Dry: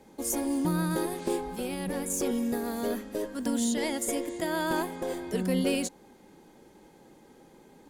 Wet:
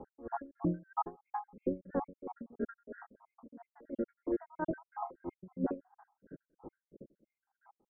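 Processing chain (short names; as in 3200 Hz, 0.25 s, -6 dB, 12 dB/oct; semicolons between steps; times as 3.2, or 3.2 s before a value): random spectral dropouts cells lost 72%; steep low-pass 1500 Hz 48 dB/oct; compressor, threshold -30 dBFS, peak gain reduction 6.5 dB; limiter -30 dBFS, peak gain reduction 8 dB; dB-linear tremolo 3 Hz, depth 28 dB; gain +9 dB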